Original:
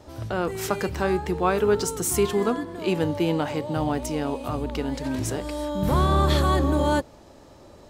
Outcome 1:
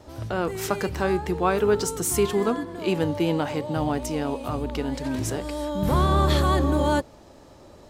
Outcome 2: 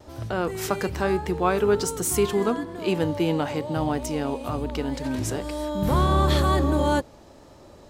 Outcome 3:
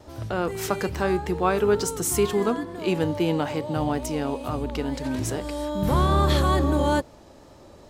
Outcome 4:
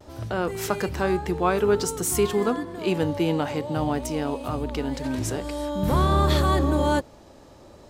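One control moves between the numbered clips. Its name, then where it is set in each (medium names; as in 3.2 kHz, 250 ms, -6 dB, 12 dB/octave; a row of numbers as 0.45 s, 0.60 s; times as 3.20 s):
vibrato, rate: 8.3 Hz, 1.1 Hz, 2.3 Hz, 0.51 Hz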